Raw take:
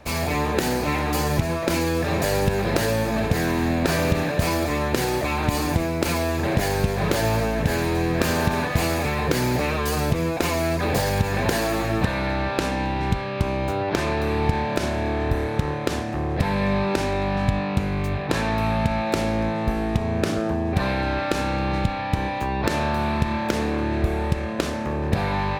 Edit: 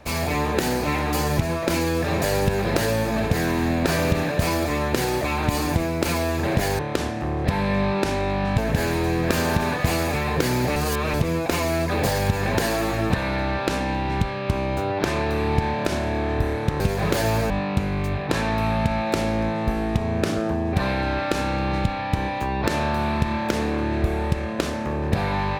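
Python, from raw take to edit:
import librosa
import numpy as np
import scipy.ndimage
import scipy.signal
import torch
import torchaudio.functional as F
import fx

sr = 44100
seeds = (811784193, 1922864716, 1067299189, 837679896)

y = fx.edit(x, sr, fx.swap(start_s=6.79, length_s=0.7, other_s=15.71, other_length_s=1.79),
    fx.reverse_span(start_s=9.67, length_s=0.38), tone=tone)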